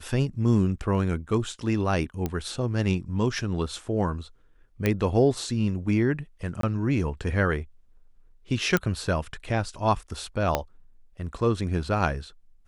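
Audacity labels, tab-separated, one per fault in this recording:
2.260000	2.260000	pop -15 dBFS
4.860000	4.860000	pop -10 dBFS
6.610000	6.630000	gap 23 ms
8.770000	8.770000	pop -9 dBFS
10.550000	10.550000	pop -8 dBFS

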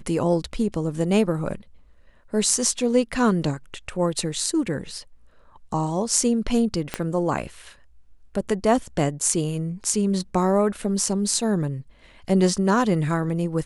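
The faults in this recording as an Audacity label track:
6.940000	6.940000	pop -10 dBFS

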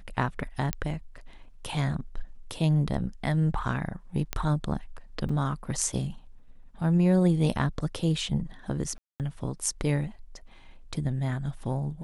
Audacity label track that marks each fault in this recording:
0.730000	0.730000	pop -11 dBFS
4.330000	4.330000	pop -12 dBFS
5.290000	5.290000	gap 4.5 ms
8.980000	9.200000	gap 0.218 s

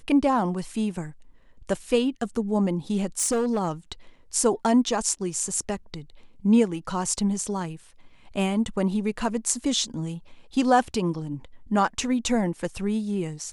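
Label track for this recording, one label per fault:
3.180000	3.710000	clipped -19.5 dBFS

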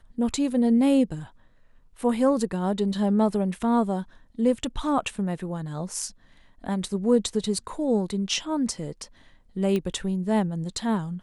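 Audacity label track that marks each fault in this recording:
9.760000	9.760000	pop -16 dBFS

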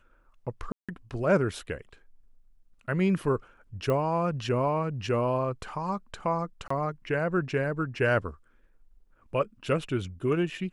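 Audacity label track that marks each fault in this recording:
0.720000	0.890000	gap 0.166 s
3.900000	3.900000	pop -18 dBFS
6.680000	6.700000	gap 24 ms

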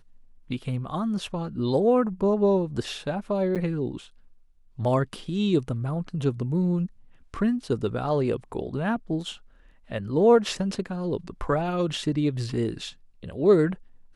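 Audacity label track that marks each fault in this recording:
3.550000	3.560000	gap 7.4 ms

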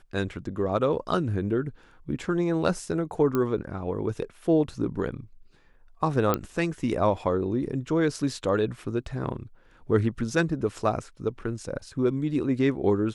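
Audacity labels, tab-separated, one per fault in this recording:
3.350000	3.350000	pop -14 dBFS
6.340000	6.340000	pop -10 dBFS

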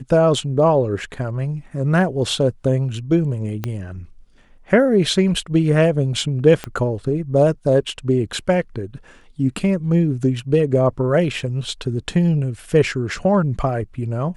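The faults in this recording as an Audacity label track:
3.640000	3.640000	pop -10 dBFS
6.640000	6.640000	pop -11 dBFS

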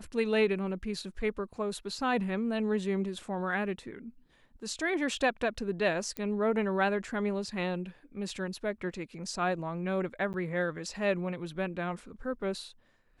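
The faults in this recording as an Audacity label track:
6.170000	6.170000	pop -20 dBFS
10.330000	10.340000	gap 9.5 ms

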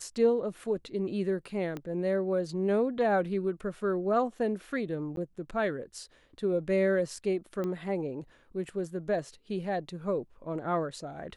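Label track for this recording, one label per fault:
1.770000	1.770000	pop -24 dBFS
5.160000	5.170000	gap
7.640000	7.640000	pop -23 dBFS

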